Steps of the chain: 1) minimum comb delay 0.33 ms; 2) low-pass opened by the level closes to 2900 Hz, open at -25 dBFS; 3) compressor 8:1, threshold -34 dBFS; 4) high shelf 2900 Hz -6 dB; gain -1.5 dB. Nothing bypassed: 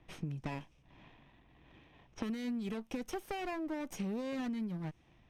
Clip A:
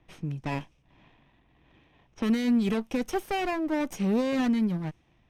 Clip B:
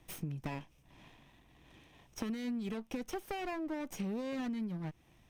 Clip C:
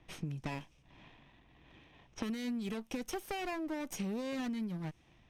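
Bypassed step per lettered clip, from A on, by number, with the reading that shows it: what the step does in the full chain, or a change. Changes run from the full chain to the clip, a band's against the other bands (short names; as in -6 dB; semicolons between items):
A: 3, crest factor change -6.5 dB; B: 2, 8 kHz band +2.5 dB; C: 4, 8 kHz band +5.0 dB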